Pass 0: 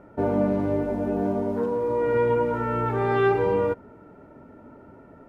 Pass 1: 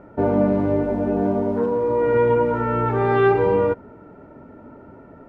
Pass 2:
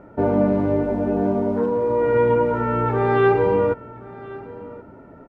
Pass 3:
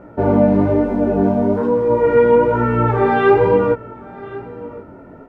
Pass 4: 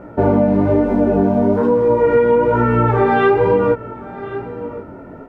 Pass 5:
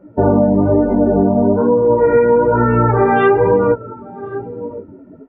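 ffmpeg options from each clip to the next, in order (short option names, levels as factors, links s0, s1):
-af "lowpass=f=3200:p=1,volume=1.68"
-af "aecho=1:1:1077:0.106"
-af "flanger=delay=16:depth=5.6:speed=1.1,volume=2.37"
-af "acompressor=threshold=0.2:ratio=6,volume=1.58"
-af "afftdn=nr=19:nf=-25,volume=1.19"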